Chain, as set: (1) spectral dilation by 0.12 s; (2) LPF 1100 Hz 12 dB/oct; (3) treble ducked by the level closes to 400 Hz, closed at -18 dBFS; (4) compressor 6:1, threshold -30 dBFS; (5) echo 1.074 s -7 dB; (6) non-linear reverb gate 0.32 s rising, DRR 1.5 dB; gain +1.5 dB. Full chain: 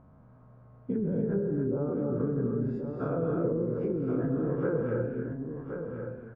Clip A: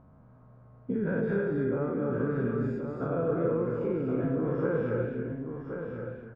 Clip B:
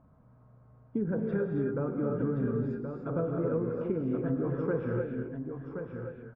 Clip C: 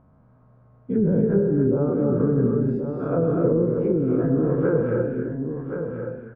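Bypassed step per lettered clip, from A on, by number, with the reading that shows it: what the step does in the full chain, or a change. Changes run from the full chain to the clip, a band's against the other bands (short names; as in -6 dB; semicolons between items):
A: 3, 2 kHz band +6.5 dB; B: 1, 2 kHz band +2.5 dB; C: 4, 2 kHz band -2.0 dB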